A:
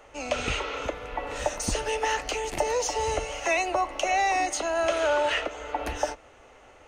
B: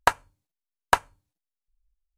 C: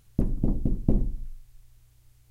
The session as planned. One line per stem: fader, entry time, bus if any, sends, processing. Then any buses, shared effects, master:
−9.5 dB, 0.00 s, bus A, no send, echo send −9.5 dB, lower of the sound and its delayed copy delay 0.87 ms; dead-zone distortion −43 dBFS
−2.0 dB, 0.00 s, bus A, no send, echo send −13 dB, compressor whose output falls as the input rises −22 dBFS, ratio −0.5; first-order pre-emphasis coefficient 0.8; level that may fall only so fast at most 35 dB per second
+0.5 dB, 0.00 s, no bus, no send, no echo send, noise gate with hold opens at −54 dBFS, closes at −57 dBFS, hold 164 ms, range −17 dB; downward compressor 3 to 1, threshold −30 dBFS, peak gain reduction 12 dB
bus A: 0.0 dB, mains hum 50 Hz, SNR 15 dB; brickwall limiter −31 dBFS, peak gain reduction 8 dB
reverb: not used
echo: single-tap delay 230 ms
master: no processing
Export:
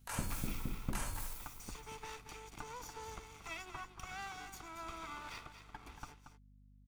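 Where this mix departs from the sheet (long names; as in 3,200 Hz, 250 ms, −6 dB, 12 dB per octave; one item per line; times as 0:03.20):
stem A −9.5 dB → −18.0 dB
stem C +0.5 dB → −7.0 dB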